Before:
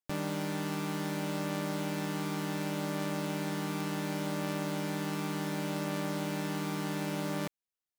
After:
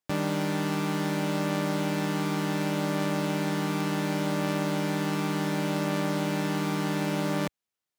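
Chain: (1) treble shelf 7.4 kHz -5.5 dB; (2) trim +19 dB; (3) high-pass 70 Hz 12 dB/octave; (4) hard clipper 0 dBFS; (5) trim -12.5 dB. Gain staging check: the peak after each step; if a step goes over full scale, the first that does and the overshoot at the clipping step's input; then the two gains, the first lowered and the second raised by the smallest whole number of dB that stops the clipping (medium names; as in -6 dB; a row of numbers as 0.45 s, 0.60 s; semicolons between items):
-25.0 dBFS, -6.0 dBFS, -3.0 dBFS, -3.0 dBFS, -15.5 dBFS; nothing clips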